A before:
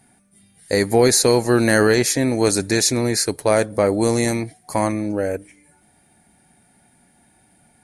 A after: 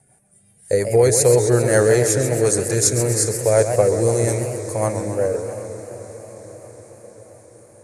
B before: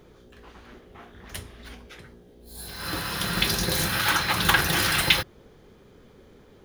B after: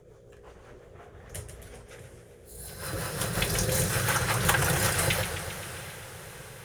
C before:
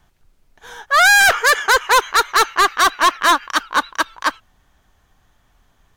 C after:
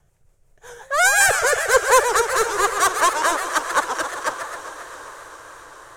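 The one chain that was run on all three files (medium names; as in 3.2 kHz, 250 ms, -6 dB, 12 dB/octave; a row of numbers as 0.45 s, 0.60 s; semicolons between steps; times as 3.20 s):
graphic EQ 125/250/500/4000/8000 Hz +10/-11/+10/-8/+10 dB; rotary cabinet horn 5.5 Hz; on a send: echo that smears into a reverb 718 ms, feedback 58%, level -15.5 dB; on the sum: modulated delay 133 ms, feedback 68%, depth 213 cents, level -8.5 dB; trim -3 dB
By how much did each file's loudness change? +0.5 LU, -4.5 LU, -3.5 LU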